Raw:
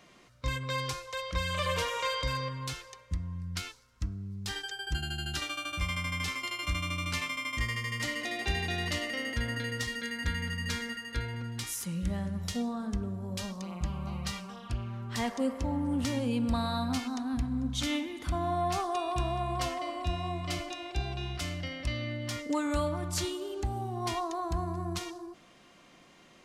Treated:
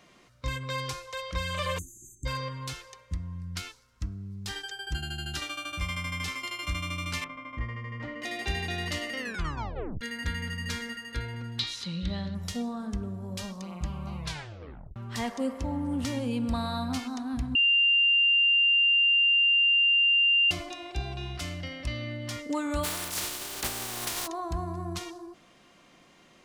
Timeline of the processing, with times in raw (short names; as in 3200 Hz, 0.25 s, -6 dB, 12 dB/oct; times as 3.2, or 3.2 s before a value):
1.78–2.26 spectral delete 400–6100 Hz
7.24–8.22 LPF 1300 Hz
9.19 tape stop 0.82 s
11.59–12.35 synth low-pass 4000 Hz, resonance Q 7
14.17 tape stop 0.79 s
17.55–20.51 bleep 2790 Hz -19 dBFS
22.83–24.26 spectral contrast lowered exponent 0.21